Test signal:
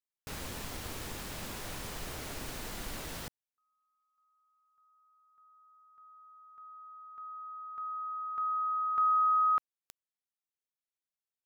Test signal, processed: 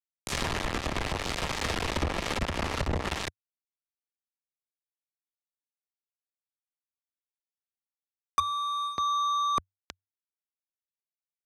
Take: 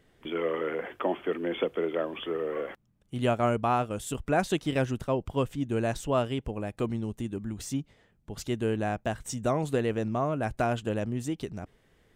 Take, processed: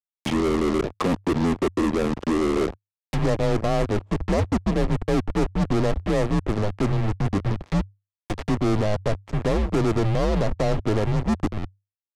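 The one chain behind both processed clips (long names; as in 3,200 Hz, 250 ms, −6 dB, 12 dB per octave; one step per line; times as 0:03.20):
centre clipping without the shift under −34 dBFS
reversed playback
downward compressor 5 to 1, threshold −35 dBFS
reversed playback
treble cut that deepens with the level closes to 470 Hz, closed at −37.5 dBFS
in parallel at −9.5 dB: fuzz pedal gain 49 dB, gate −57 dBFS
on the sum: low-pass filter 11,000 Hz 12 dB per octave
frequency shifter −100 Hz
notch filter 1,500 Hz, Q 12
level +3 dB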